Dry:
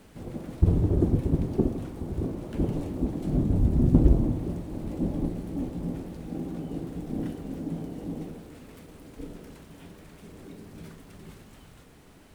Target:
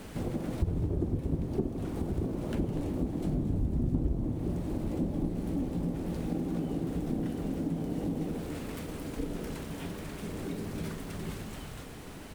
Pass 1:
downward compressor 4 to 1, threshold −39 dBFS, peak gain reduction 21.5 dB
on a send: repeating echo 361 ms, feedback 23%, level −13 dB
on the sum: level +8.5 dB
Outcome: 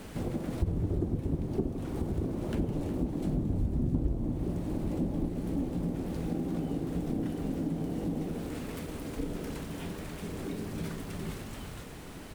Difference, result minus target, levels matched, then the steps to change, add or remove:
echo 118 ms late
change: repeating echo 243 ms, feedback 23%, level −13 dB

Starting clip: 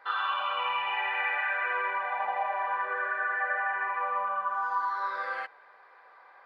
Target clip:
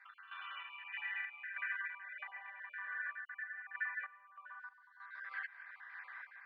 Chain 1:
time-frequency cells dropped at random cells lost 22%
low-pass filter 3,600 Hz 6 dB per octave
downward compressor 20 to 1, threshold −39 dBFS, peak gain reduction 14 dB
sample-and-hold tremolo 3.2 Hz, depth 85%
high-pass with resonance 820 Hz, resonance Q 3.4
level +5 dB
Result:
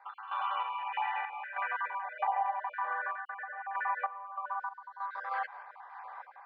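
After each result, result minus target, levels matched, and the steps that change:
1,000 Hz band +12.0 dB; downward compressor: peak gain reduction −7.5 dB
change: high-pass with resonance 1,800 Hz, resonance Q 3.4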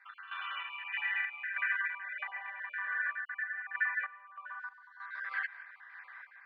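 downward compressor: peak gain reduction −7.5 dB
change: downward compressor 20 to 1, threshold −47 dBFS, peak gain reduction 21.5 dB

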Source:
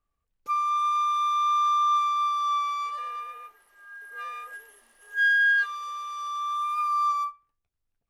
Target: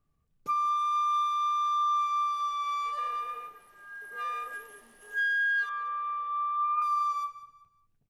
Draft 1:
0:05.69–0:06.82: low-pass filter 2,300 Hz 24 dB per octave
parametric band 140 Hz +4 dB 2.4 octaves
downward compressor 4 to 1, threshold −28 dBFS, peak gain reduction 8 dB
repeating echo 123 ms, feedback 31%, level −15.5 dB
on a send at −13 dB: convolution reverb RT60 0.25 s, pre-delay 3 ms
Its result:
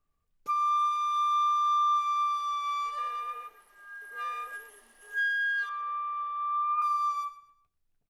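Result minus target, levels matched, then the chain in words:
125 Hz band −9.5 dB; echo 66 ms early
0:05.69–0:06.82: low-pass filter 2,300 Hz 24 dB per octave
parametric band 140 Hz +15 dB 2.4 octaves
downward compressor 4 to 1, threshold −28 dBFS, peak gain reduction 8 dB
repeating echo 189 ms, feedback 31%, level −15.5 dB
on a send at −13 dB: convolution reverb RT60 0.25 s, pre-delay 3 ms

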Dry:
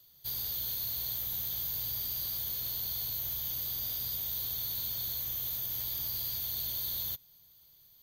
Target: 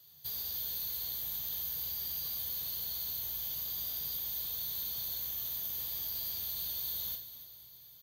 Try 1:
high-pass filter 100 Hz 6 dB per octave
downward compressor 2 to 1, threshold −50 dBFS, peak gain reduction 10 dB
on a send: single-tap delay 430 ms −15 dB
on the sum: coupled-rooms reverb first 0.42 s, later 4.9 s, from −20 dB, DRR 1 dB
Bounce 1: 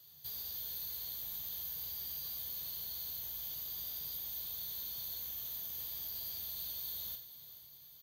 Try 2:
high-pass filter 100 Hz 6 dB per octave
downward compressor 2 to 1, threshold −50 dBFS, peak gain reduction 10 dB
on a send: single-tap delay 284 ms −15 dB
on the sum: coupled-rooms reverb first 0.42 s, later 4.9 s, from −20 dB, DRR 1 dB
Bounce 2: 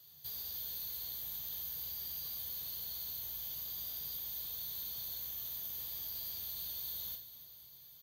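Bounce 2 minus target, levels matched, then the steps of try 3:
downward compressor: peak gain reduction +4.5 dB
high-pass filter 100 Hz 6 dB per octave
downward compressor 2 to 1, threshold −41 dBFS, peak gain reduction 5.5 dB
on a send: single-tap delay 284 ms −15 dB
on the sum: coupled-rooms reverb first 0.42 s, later 4.9 s, from −20 dB, DRR 1 dB

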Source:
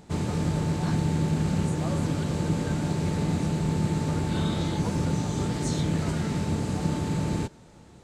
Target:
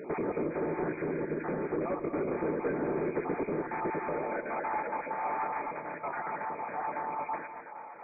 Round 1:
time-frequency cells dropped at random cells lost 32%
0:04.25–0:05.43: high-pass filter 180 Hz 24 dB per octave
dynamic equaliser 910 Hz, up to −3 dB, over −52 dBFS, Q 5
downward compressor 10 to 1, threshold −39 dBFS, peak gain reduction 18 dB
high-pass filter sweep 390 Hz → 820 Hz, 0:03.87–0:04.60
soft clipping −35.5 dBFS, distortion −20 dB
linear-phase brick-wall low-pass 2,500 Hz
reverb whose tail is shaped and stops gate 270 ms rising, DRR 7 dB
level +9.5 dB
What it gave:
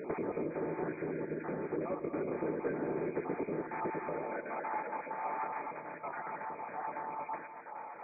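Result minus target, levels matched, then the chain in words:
downward compressor: peak gain reduction +6 dB
time-frequency cells dropped at random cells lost 32%
0:04.25–0:05.43: high-pass filter 180 Hz 24 dB per octave
dynamic equaliser 910 Hz, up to −3 dB, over −52 dBFS, Q 5
downward compressor 10 to 1, threshold −32.5 dBFS, peak gain reduction 12.5 dB
high-pass filter sweep 390 Hz → 820 Hz, 0:03.87–0:04.60
soft clipping −35.5 dBFS, distortion −14 dB
linear-phase brick-wall low-pass 2,500 Hz
reverb whose tail is shaped and stops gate 270 ms rising, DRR 7 dB
level +9.5 dB

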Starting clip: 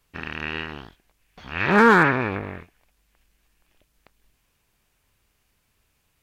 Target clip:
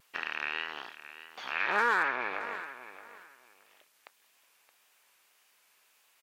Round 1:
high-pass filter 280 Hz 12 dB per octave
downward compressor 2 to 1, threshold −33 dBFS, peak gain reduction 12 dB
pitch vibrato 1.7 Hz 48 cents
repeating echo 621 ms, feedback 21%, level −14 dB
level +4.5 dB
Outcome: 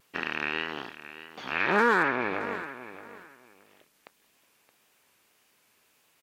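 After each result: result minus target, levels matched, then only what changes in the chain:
250 Hz band +11.0 dB; downward compressor: peak gain reduction −2.5 dB
change: high-pass filter 690 Hz 12 dB per octave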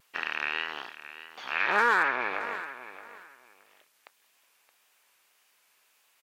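downward compressor: peak gain reduction −3.5 dB
change: downward compressor 2 to 1, threshold −40 dBFS, peak gain reduction 14.5 dB

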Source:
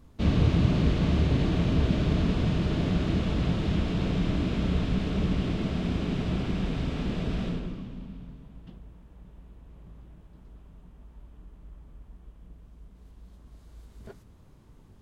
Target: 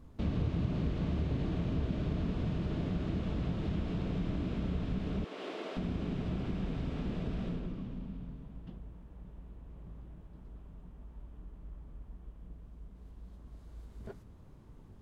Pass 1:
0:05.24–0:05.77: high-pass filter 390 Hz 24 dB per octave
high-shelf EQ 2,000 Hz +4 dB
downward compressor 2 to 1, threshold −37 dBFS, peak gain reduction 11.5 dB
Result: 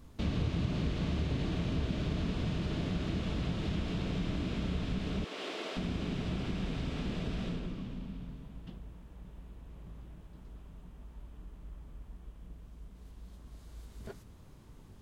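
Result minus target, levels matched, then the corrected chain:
4,000 Hz band +7.5 dB
0:05.24–0:05.77: high-pass filter 390 Hz 24 dB per octave
high-shelf EQ 2,000 Hz −7 dB
downward compressor 2 to 1, threshold −37 dBFS, peak gain reduction 11.5 dB

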